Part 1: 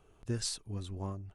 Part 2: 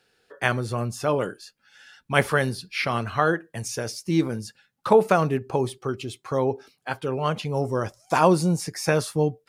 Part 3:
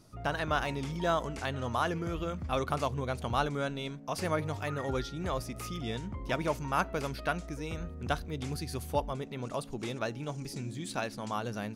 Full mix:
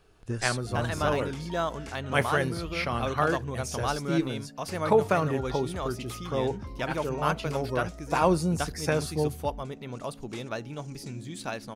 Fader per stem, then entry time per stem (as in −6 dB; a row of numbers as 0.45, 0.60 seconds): +2.0, −5.0, 0.0 decibels; 0.00, 0.00, 0.50 seconds